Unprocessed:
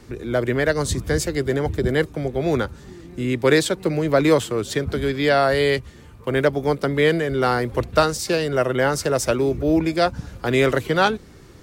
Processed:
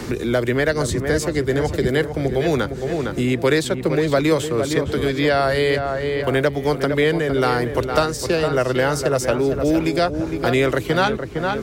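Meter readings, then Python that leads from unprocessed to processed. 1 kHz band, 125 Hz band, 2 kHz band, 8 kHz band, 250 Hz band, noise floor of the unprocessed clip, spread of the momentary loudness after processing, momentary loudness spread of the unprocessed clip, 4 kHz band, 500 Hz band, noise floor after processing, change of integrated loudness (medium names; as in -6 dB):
+0.5 dB, +1.5 dB, +1.0 dB, -0.5 dB, +1.5 dB, -45 dBFS, 4 LU, 7 LU, +0.5 dB, +1.0 dB, -29 dBFS, +1.0 dB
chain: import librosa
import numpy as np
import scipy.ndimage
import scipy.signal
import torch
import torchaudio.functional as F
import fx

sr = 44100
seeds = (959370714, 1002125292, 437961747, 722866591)

p1 = x + fx.echo_filtered(x, sr, ms=459, feedback_pct=43, hz=2200.0, wet_db=-8.5, dry=0)
y = fx.band_squash(p1, sr, depth_pct=70)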